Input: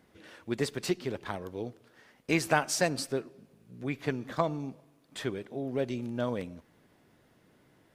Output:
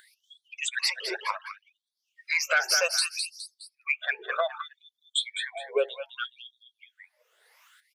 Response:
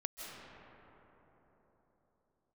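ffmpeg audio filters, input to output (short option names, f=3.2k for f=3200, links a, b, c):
-filter_complex "[0:a]afftfilt=real='re*pow(10,18/40*sin(2*PI*(0.82*log(max(b,1)*sr/1024/100)/log(2)-(2.7)*(pts-256)/sr)))':imag='im*pow(10,18/40*sin(2*PI*(0.82*log(max(b,1)*sr/1024/100)/log(2)-(2.7)*(pts-256)/sr)))':win_size=1024:overlap=0.75,asplit=2[a][b];[b]asoftclip=type=tanh:threshold=-23.5dB,volume=-6dB[c];[a][c]amix=inputs=2:normalize=0,afftdn=nr=36:nf=-36,highpass=f=180:p=1,equalizer=f=670:t=o:w=1.3:g=-10,aecho=1:1:208|416|624:0.398|0.104|0.0269,acompressor=mode=upward:threshold=-34dB:ratio=2.5,adynamicequalizer=threshold=0.00708:dfrequency=1800:dqfactor=0.85:tfrequency=1800:tqfactor=0.85:attack=5:release=100:ratio=0.375:range=2:mode=boostabove:tftype=bell,acontrast=89,alimiter=limit=-13.5dB:level=0:latency=1:release=397,afftfilt=real='re*gte(b*sr/1024,380*pow(3300/380,0.5+0.5*sin(2*PI*0.64*pts/sr)))':imag='im*gte(b*sr/1024,380*pow(3300/380,0.5+0.5*sin(2*PI*0.64*pts/sr)))':win_size=1024:overlap=0.75"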